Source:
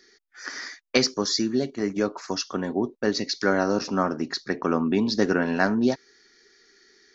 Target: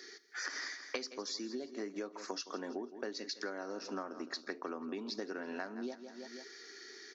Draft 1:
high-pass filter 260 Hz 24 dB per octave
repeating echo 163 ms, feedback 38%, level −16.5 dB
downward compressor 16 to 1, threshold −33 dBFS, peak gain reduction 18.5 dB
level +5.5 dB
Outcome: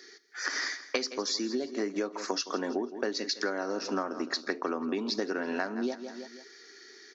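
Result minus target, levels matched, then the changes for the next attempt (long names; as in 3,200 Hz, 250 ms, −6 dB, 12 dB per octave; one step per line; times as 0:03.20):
downward compressor: peak gain reduction −9.5 dB
change: downward compressor 16 to 1, threshold −43 dBFS, peak gain reduction 27.5 dB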